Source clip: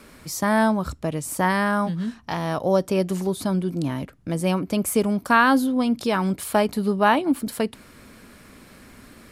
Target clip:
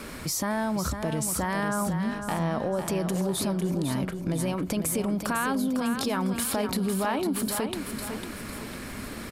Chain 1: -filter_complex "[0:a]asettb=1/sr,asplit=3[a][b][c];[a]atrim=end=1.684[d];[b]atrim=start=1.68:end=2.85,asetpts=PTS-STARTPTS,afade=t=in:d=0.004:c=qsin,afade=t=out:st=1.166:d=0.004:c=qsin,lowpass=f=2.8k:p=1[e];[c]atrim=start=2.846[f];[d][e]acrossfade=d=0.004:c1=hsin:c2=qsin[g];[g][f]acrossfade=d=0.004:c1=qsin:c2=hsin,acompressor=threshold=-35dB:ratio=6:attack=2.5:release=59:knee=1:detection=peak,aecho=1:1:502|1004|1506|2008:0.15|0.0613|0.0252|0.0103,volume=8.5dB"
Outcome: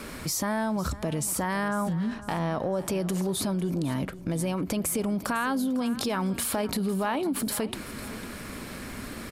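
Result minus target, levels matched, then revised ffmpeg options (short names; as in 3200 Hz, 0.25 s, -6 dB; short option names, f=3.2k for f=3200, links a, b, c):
echo-to-direct -9 dB
-filter_complex "[0:a]asettb=1/sr,asplit=3[a][b][c];[a]atrim=end=1.684[d];[b]atrim=start=1.68:end=2.85,asetpts=PTS-STARTPTS,afade=t=in:d=0.004:c=qsin,afade=t=out:st=1.166:d=0.004:c=qsin,lowpass=f=2.8k:p=1[e];[c]atrim=start=2.846[f];[d][e]acrossfade=d=0.004:c1=hsin:c2=qsin[g];[g][f]acrossfade=d=0.004:c1=qsin:c2=hsin,acompressor=threshold=-35dB:ratio=6:attack=2.5:release=59:knee=1:detection=peak,aecho=1:1:502|1004|1506|2008|2510:0.422|0.173|0.0709|0.0291|0.0119,volume=8.5dB"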